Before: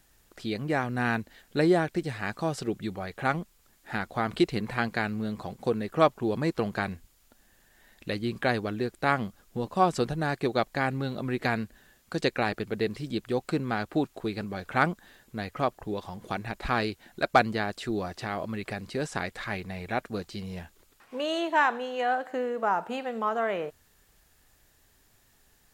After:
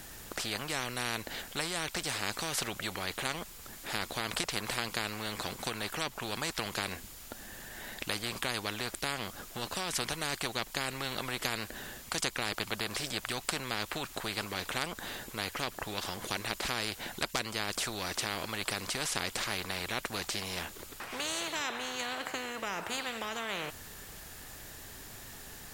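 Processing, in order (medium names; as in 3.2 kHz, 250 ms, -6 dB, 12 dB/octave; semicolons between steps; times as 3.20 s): compression 2.5:1, threshold -25 dBFS, peak gain reduction 7.5 dB; spectrum-flattening compressor 4:1; trim +3 dB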